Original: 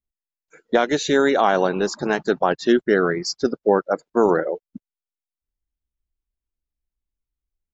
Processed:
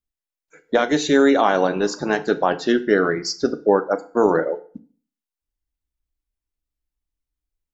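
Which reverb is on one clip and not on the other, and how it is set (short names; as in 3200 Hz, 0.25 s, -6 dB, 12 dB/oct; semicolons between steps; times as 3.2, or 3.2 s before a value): FDN reverb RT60 0.44 s, low-frequency decay 1×, high-frequency decay 0.9×, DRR 9 dB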